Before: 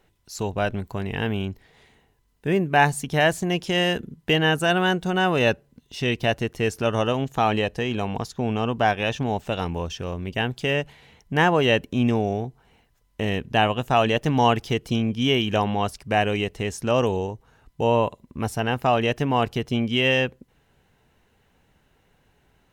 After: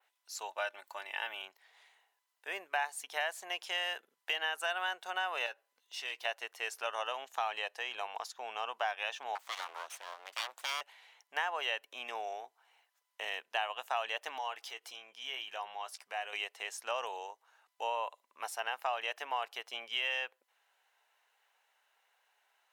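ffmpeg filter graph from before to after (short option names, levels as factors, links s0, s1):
-filter_complex "[0:a]asettb=1/sr,asplit=3[s0][s1][s2];[s0]atrim=end=0.484[s3];[s1]atrim=start=0.48:end=1.42,asetpts=PTS-STARTPTS,afade=t=in:d=0.004:c=qsin,afade=t=out:st=0.936:d=0.004:c=qsin,lowshelf=f=230:g=-6,aecho=1:1:3.4:0.61,atrim=end_sample=41454[s4];[s2]atrim=start=1.416[s5];[s3][s4]acrossfade=d=0.004:c1=hsin:c2=qsin[s6];[s6][s5]acrossfade=d=0.004:c1=qsin:c2=hsin,asettb=1/sr,asplit=3[s7][s8][s9];[s7]atrim=end=5.464[s10];[s8]atrim=start=5.46:end=6.25,asetpts=PTS-STARTPTS,afade=t=in:d=0.004:c=qsin,afade=t=out:st=0.786:d=0.004:c=qsin,acompressor=threshold=0.0447:ratio=2:attack=3.2:release=140:knee=1:detection=peak,asoftclip=type=hard:threshold=0.106,asplit=2[s11][s12];[s12]adelay=15,volume=0.224[s13];[s11][s13]amix=inputs=2:normalize=0,atrim=end_sample=34839[s14];[s9]atrim=start=6.246[s15];[s10][s14]acrossfade=d=0.004:c1=hsin:c2=qsin[s16];[s16][s15]acrossfade=d=0.004:c1=qsin:c2=hsin,asettb=1/sr,asplit=3[s17][s18][s19];[s17]atrim=end=9.354[s20];[s18]atrim=start=9.35:end=10.81,asetpts=PTS-STARTPTS,afade=t=in:d=0.004:c=qsin,afade=t=out:st=1.456:d=0.004:c=qsin,highpass=97,aeval=exprs='abs(val(0))':c=same[s21];[s19]atrim=start=10.806[s22];[s20][s21]acrossfade=d=0.004:c1=hsin:c2=qsin[s23];[s23][s22]acrossfade=d=0.004:c1=qsin:c2=hsin,asettb=1/sr,asplit=3[s24][s25][s26];[s24]atrim=end=14.384[s27];[s25]atrim=start=14.38:end=16.33,asetpts=PTS-STARTPTS,afade=t=in:d=0.004:c=qsin,afade=t=out:st=1.946:d=0.004:c=qsin,acompressor=threshold=0.0251:ratio=2:attack=3.2:release=140:knee=1:detection=peak,asplit=2[s28][s29];[s29]adelay=15,volume=0.299[s30];[s28][s30]amix=inputs=2:normalize=0,atrim=end_sample=85995[s31];[s26]atrim=start=16.326[s32];[s27][s31]acrossfade=d=0.004:c1=hsin:c2=qsin[s33];[s33][s32]acrossfade=d=0.004:c1=qsin:c2=hsin,highpass=f=720:w=0.5412,highpass=f=720:w=1.3066,adynamicequalizer=threshold=0.00562:dfrequency=6200:dqfactor=1:tfrequency=6200:tqfactor=1:attack=5:release=100:ratio=0.375:range=2:mode=cutabove:tftype=bell,acompressor=threshold=0.0562:ratio=4,volume=0.501"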